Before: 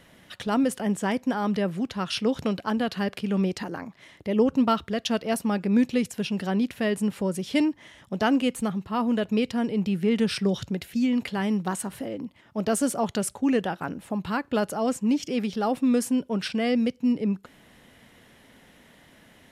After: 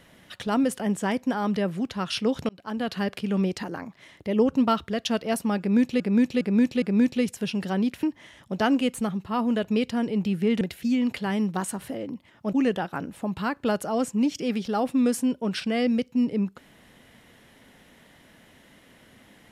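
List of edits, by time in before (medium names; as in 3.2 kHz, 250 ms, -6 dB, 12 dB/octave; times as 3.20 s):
2.49–2.93 s: fade in
5.59–6.00 s: loop, 4 plays
6.80–7.64 s: delete
10.22–10.72 s: delete
12.64–13.41 s: delete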